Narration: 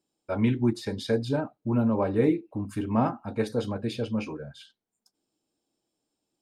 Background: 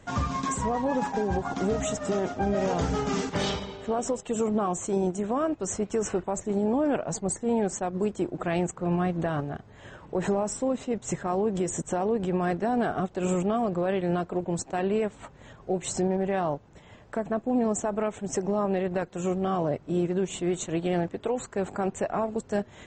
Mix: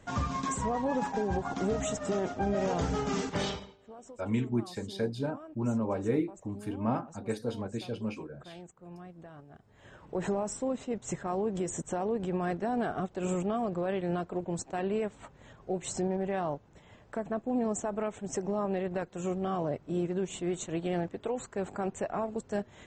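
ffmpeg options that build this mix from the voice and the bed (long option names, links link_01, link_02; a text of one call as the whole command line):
ffmpeg -i stem1.wav -i stem2.wav -filter_complex "[0:a]adelay=3900,volume=-6dB[link_01];[1:a]volume=12.5dB,afade=type=out:start_time=3.4:duration=0.36:silence=0.133352,afade=type=in:start_time=9.48:duration=0.62:silence=0.158489[link_02];[link_01][link_02]amix=inputs=2:normalize=0" out.wav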